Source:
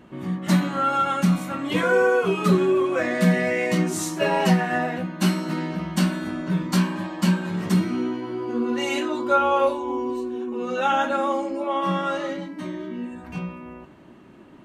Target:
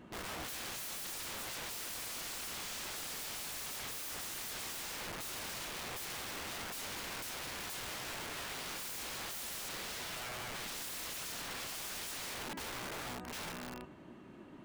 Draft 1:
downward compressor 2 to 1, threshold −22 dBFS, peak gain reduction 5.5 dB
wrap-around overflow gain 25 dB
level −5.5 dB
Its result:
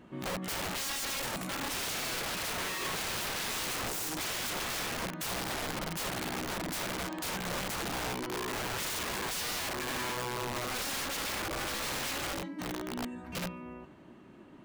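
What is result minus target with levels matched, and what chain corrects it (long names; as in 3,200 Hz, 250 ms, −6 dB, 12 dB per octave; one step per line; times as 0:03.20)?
wrap-around overflow: distortion −23 dB
downward compressor 2 to 1, threshold −22 dBFS, peak gain reduction 5.5 dB
wrap-around overflow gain 32.5 dB
level −5.5 dB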